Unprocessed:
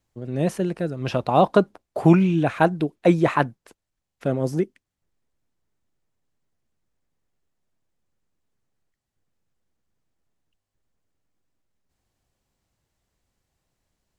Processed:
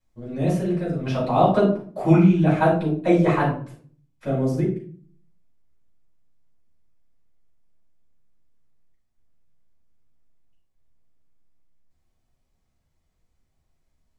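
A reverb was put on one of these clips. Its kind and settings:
rectangular room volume 390 cubic metres, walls furnished, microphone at 8.4 metres
level −13 dB

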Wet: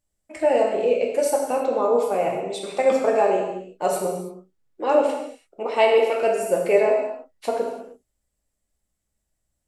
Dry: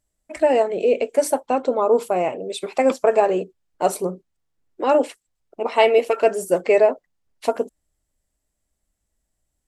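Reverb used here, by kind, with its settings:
reverb whose tail is shaped and stops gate 360 ms falling, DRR −1 dB
level −5 dB

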